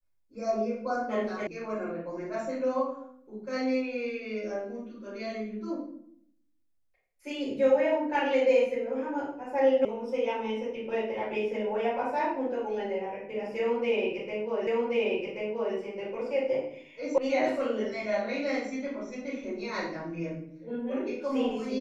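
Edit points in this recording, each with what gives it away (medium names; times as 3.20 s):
1.47 s: sound stops dead
9.85 s: sound stops dead
14.67 s: repeat of the last 1.08 s
17.18 s: sound stops dead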